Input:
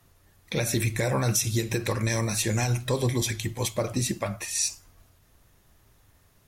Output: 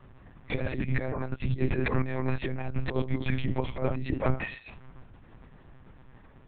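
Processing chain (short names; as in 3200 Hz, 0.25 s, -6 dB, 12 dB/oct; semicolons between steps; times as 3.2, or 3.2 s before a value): negative-ratio compressor -30 dBFS, ratio -0.5; air absorption 490 m; monotone LPC vocoder at 8 kHz 130 Hz; gain +5 dB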